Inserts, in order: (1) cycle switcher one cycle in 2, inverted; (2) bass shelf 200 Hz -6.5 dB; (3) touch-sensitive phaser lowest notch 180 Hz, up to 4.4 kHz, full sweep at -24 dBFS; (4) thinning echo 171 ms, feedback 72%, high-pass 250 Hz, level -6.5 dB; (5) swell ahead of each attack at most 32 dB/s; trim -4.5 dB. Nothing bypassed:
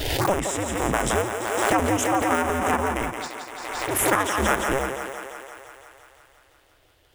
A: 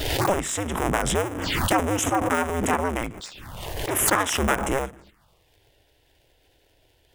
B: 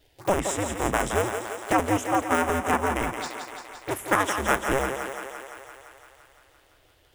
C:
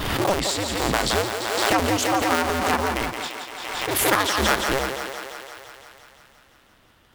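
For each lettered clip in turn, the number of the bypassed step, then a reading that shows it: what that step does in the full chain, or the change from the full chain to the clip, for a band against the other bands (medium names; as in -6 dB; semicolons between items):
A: 4, 4 kHz band +2.5 dB; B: 5, 8 kHz band -3.0 dB; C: 3, 4 kHz band +7.5 dB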